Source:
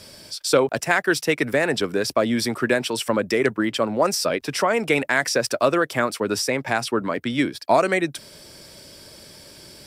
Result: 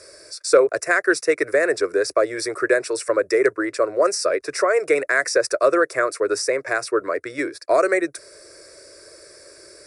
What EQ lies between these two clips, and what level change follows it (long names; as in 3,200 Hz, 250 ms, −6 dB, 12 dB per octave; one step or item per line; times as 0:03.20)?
linear-phase brick-wall low-pass 11,000 Hz
low shelf with overshoot 250 Hz −10.5 dB, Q 1.5
phaser with its sweep stopped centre 850 Hz, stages 6
+2.5 dB